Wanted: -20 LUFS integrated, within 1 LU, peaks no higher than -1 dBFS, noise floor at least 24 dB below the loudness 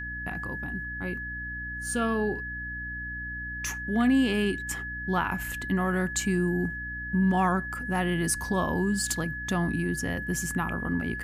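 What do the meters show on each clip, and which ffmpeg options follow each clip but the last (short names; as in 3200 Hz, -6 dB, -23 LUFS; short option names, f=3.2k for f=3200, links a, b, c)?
hum 60 Hz; harmonics up to 300 Hz; hum level -37 dBFS; steady tone 1700 Hz; tone level -34 dBFS; loudness -28.5 LUFS; peak -14.0 dBFS; loudness target -20.0 LUFS
-> -af "bandreject=f=60:t=h:w=4,bandreject=f=120:t=h:w=4,bandreject=f=180:t=h:w=4,bandreject=f=240:t=h:w=4,bandreject=f=300:t=h:w=4"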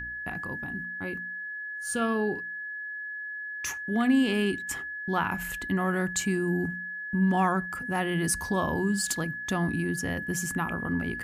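hum none; steady tone 1700 Hz; tone level -34 dBFS
-> -af "bandreject=f=1.7k:w=30"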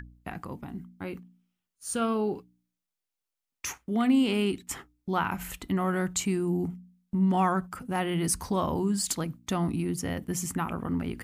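steady tone none; loudness -29.5 LUFS; peak -13.5 dBFS; loudness target -20.0 LUFS
-> -af "volume=9.5dB"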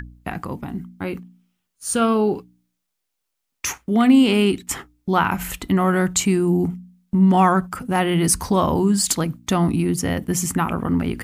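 loudness -20.0 LUFS; peak -4.0 dBFS; noise floor -78 dBFS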